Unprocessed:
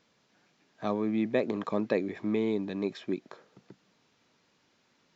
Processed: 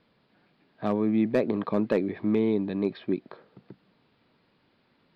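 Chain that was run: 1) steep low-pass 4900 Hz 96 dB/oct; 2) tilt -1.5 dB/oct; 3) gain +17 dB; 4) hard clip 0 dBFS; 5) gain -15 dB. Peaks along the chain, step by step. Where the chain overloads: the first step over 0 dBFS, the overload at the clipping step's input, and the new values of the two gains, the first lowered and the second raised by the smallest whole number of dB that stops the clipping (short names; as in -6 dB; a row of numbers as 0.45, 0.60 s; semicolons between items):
-13.5, -12.5, +4.5, 0.0, -15.0 dBFS; step 3, 4.5 dB; step 3 +12 dB, step 5 -10 dB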